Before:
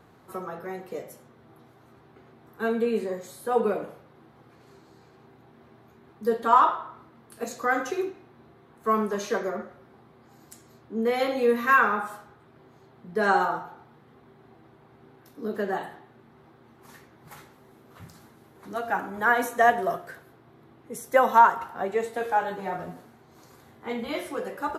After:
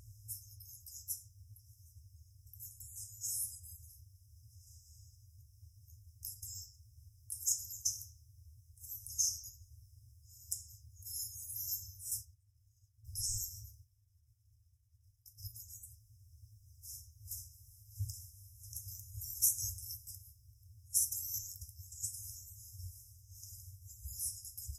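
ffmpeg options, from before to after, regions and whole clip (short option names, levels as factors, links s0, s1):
-filter_complex "[0:a]asettb=1/sr,asplit=3[s0][s1][s2];[s0]atrim=end=12.114[s3];[s1]atrim=start=12.11:end=15.47,asetpts=PTS-STARTPTS,afade=t=in:d=0.004:c=qsin,afade=t=out:st=3.356:d=0.004:c=qsin,acontrast=80,agate=range=0.0224:threshold=0.0141:ratio=3:release=100:detection=peak[s4];[s2]atrim=start=15.466[s5];[s3][s4]acrossfade=d=0.004:c1=hsin:c2=qsin[s6];[s6][s5]acrossfade=d=0.004:c1=qsin:c2=hsin,afftfilt=real='re*(1-between(b*sr/4096,110,5000))':imag='im*(1-between(b*sr/4096,110,5000))':win_size=4096:overlap=0.75,equalizer=f=120:t=o:w=0.21:g=9,volume=3.16"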